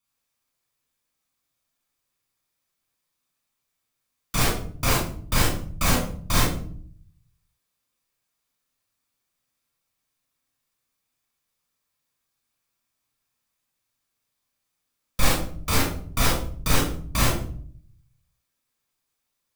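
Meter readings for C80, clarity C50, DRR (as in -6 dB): 7.0 dB, 1.0 dB, -4.0 dB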